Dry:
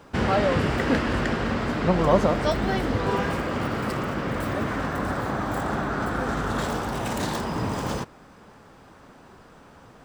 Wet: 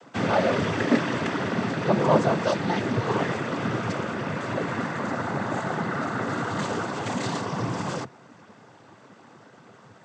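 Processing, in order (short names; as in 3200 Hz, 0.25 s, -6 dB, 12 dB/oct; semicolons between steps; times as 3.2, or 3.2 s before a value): noise vocoder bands 16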